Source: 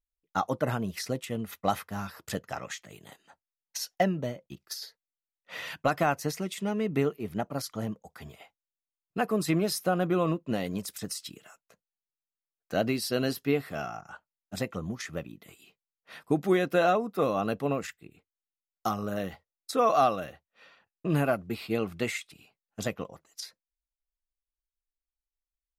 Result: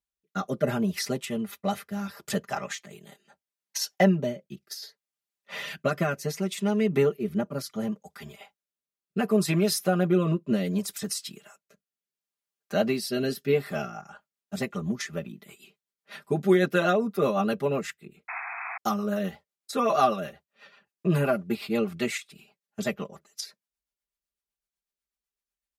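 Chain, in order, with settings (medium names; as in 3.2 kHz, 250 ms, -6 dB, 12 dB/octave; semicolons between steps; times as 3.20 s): high-pass 78 Hz; comb 5 ms, depth 91%; rotary cabinet horn 0.7 Hz, later 8 Hz, at 13.53 s; painted sound noise, 18.28–18.78 s, 660–2600 Hz -38 dBFS; trim +2.5 dB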